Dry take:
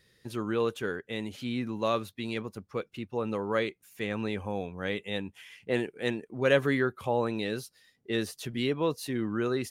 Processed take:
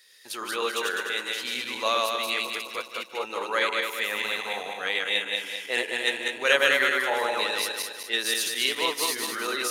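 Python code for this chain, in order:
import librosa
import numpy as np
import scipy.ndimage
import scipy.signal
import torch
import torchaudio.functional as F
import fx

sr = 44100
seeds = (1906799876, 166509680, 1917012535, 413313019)

y = fx.reverse_delay_fb(x, sr, ms=103, feedback_pct=67, wet_db=-1)
y = scipy.signal.sosfilt(scipy.signal.butter(2, 670.0, 'highpass', fs=sr, output='sos'), y)
y = fx.high_shelf(y, sr, hz=2100.0, db=11.0)
y = y + 10.0 ** (-17.0 / 20.0) * np.pad(y, (int(149 * sr / 1000.0), 0))[:len(y)]
y = y * 10.0 ** (2.0 / 20.0)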